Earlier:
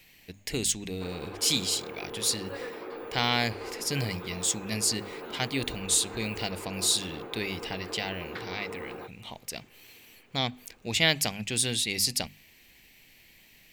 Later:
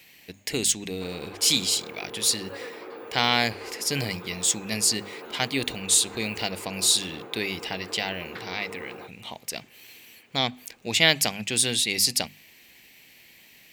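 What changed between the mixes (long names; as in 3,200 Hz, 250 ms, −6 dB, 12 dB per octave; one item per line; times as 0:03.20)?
speech +4.5 dB
master: add high-pass filter 190 Hz 6 dB per octave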